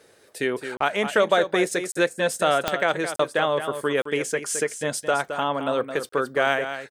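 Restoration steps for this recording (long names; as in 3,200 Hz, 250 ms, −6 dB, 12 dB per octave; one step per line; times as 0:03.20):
click removal
repair the gap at 0:00.77/0:01.92/0:03.16/0:04.02/0:06.09, 34 ms
echo removal 217 ms −9.5 dB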